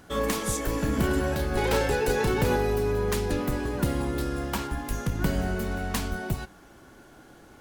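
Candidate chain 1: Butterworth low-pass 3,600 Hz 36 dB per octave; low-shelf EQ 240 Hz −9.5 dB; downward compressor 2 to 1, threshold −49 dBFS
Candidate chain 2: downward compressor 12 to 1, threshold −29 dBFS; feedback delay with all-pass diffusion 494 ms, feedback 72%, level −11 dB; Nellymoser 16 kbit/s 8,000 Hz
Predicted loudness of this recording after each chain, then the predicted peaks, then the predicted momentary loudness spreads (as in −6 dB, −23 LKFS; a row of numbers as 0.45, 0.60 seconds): −42.5, −34.0 LKFS; −28.5, −20.0 dBFS; 14, 10 LU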